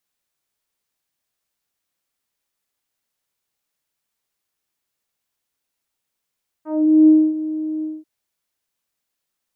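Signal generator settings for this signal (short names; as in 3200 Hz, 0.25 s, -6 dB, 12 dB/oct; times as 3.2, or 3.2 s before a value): synth note saw D#4 24 dB/oct, low-pass 330 Hz, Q 1.1, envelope 2 oct, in 0.21 s, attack 0.424 s, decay 0.26 s, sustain -15 dB, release 0.21 s, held 1.18 s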